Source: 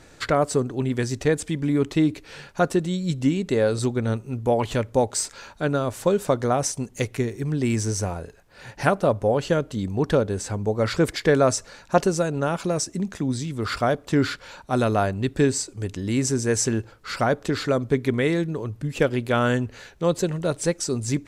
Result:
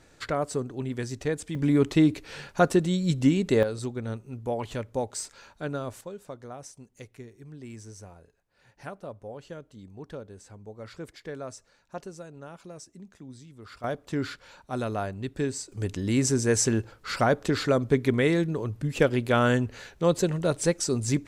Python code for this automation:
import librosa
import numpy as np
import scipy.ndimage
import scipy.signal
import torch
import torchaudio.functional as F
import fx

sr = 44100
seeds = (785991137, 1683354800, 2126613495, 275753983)

y = fx.gain(x, sr, db=fx.steps((0.0, -7.5), (1.55, 0.0), (3.63, -9.0), (6.01, -19.5), (13.84, -9.0), (15.72, -1.0)))